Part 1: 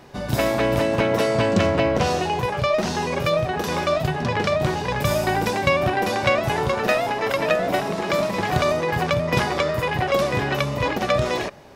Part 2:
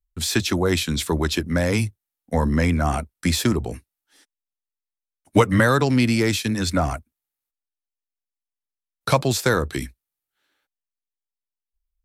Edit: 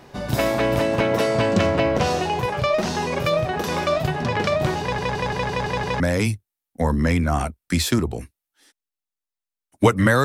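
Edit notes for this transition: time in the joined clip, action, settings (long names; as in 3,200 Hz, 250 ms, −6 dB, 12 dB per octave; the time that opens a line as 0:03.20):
part 1
0:04.81: stutter in place 0.17 s, 7 plays
0:06.00: continue with part 2 from 0:01.53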